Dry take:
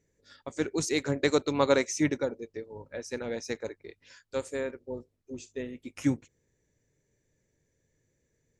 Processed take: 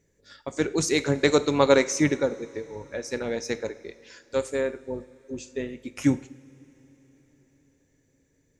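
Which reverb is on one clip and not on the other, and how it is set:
coupled-rooms reverb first 0.58 s, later 4.8 s, from −18 dB, DRR 12 dB
level +5 dB

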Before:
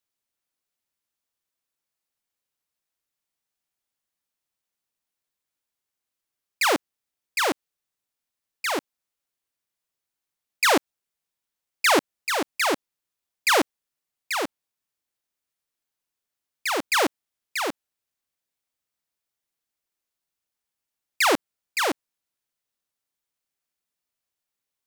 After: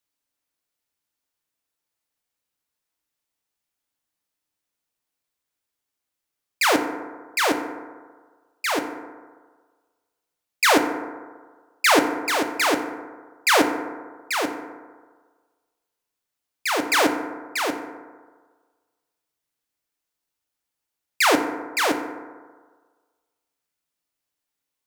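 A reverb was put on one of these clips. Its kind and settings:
feedback delay network reverb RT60 1.5 s, low-frequency decay 0.85×, high-frequency decay 0.35×, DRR 5 dB
level +1.5 dB

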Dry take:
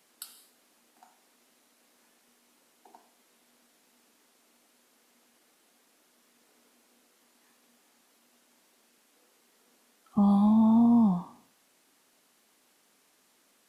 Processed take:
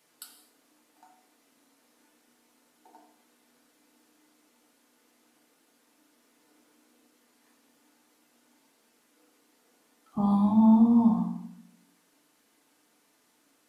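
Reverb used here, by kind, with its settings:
feedback delay network reverb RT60 0.59 s, low-frequency decay 1.6×, high-frequency decay 0.35×, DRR 1 dB
level −3 dB

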